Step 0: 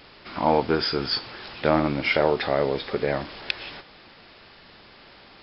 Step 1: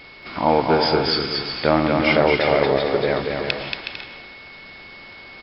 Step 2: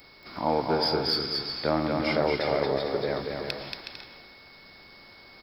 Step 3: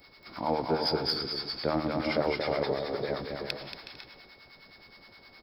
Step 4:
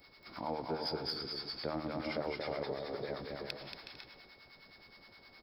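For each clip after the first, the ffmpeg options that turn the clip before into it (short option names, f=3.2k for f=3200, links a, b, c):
-af "aeval=exprs='val(0)+0.00501*sin(2*PI*2200*n/s)':c=same,aecho=1:1:230|368|450.8|500.5|530.3:0.631|0.398|0.251|0.158|0.1,volume=3dB"
-filter_complex "[0:a]equalizer=f=4.9k:t=o:w=1.5:g=-11,acrossover=split=250[a][b];[b]aexciter=amount=4.8:drive=9:freq=4.2k[c];[a][c]amix=inputs=2:normalize=0,volume=-8dB"
-filter_complex "[0:a]acrossover=split=800[a][b];[a]aeval=exprs='val(0)*(1-0.7/2+0.7/2*cos(2*PI*9.6*n/s))':c=same[c];[b]aeval=exprs='val(0)*(1-0.7/2-0.7/2*cos(2*PI*9.6*n/s))':c=same[d];[c][d]amix=inputs=2:normalize=0"
-af "acompressor=threshold=-37dB:ratio=1.5,volume=-4.5dB"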